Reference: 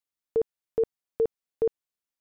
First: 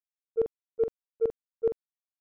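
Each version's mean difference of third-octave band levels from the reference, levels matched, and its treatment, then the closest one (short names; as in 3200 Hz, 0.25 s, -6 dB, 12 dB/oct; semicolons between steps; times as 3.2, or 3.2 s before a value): 5.5 dB: gate -21 dBFS, range -40 dB; low-pass opened by the level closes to 970 Hz; doubler 44 ms -9.5 dB; gain +8 dB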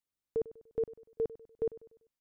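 1.5 dB: limiter -26 dBFS, peak gain reduction 7.5 dB; low shelf 330 Hz +8.5 dB; on a send: feedback echo 98 ms, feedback 43%, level -17.5 dB; on the sum: gain -3 dB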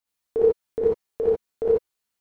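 3.0 dB: low shelf 140 Hz -3.5 dB; phaser 1.4 Hz, delay 2.7 ms, feedback 29%; non-linear reverb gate 0.11 s rising, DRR -7.5 dB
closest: second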